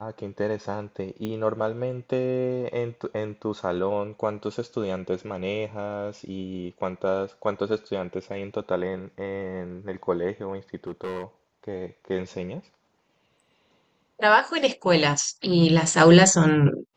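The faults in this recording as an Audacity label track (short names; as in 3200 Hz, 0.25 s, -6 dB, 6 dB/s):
1.250000	1.250000	pop -18 dBFS
10.870000	11.240000	clipped -27.5 dBFS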